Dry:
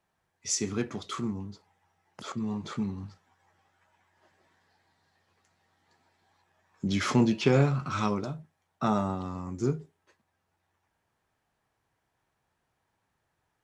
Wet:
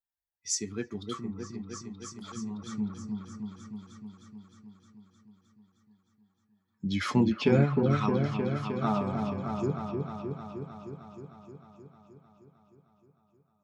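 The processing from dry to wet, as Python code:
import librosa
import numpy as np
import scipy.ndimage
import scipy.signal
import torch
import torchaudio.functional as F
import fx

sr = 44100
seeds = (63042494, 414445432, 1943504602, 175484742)

y = fx.bin_expand(x, sr, power=1.5)
y = fx.echo_opening(y, sr, ms=309, hz=750, octaves=1, feedback_pct=70, wet_db=-3)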